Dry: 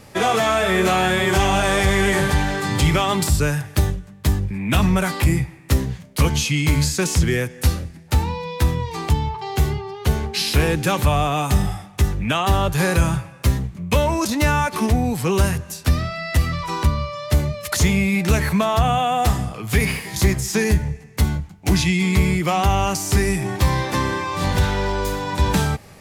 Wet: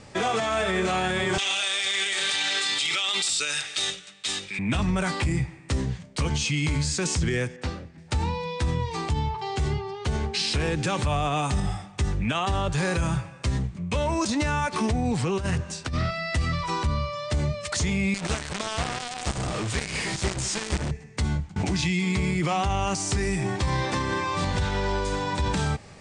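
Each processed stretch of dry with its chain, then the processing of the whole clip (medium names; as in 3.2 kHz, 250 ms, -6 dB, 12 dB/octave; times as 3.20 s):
1.38–4.59 s: high-pass 450 Hz + resonant high shelf 1.8 kHz +13.5 dB, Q 1.5 + small resonant body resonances 1.3/3.7 kHz, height 12 dB, ringing for 25 ms
7.56–7.98 s: high-pass 290 Hz 6 dB/octave + tape spacing loss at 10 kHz 21 dB
15.11–16.11 s: treble shelf 5.9 kHz -4.5 dB + compressor with a negative ratio -22 dBFS + loudspeaker Doppler distortion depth 0.13 ms
18.14–20.91 s: treble shelf 2.6 kHz +2.5 dB + small resonant body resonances 340/600/1500 Hz, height 6 dB, ringing for 70 ms + companded quantiser 2-bit
21.56–22.53 s: high-pass 75 Hz + swell ahead of each attack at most 63 dB/s
whole clip: elliptic low-pass 8.8 kHz, stop band 40 dB; peak limiter -15.5 dBFS; trim -1.5 dB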